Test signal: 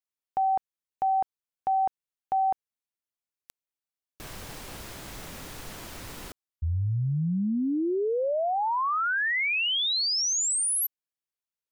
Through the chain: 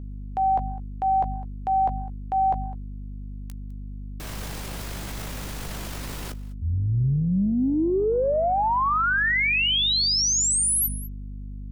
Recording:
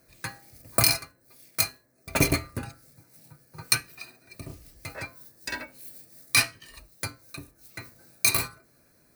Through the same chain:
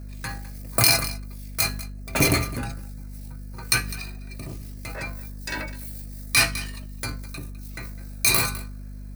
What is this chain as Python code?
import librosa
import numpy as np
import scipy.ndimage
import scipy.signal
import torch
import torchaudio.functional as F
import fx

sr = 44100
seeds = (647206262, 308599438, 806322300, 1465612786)

p1 = fx.doubler(x, sr, ms=16.0, db=-14)
p2 = fx.add_hum(p1, sr, base_hz=50, snr_db=10)
p3 = p2 + fx.echo_single(p2, sr, ms=205, db=-21.0, dry=0)
p4 = fx.transient(p3, sr, attack_db=-4, sustain_db=6)
y = F.gain(torch.from_numpy(p4), 4.0).numpy()